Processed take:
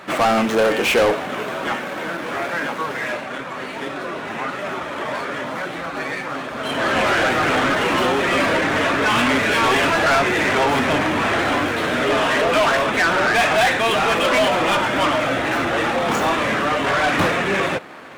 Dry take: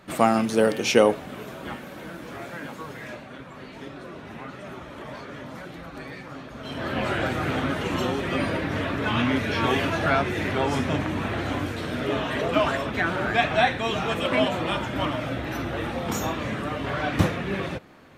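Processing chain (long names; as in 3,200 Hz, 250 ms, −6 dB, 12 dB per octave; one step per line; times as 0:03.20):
running median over 9 samples
mid-hump overdrive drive 27 dB, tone 6,500 Hz, clips at −4.5 dBFS
level −4 dB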